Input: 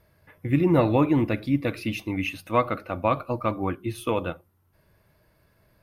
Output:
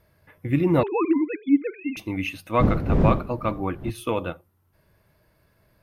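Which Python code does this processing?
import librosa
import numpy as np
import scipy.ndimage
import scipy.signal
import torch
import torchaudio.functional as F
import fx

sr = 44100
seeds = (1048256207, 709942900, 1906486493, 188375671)

y = fx.sine_speech(x, sr, at=(0.83, 1.97))
y = fx.dmg_wind(y, sr, seeds[0], corner_hz=210.0, level_db=-24.0, at=(2.59, 3.89), fade=0.02)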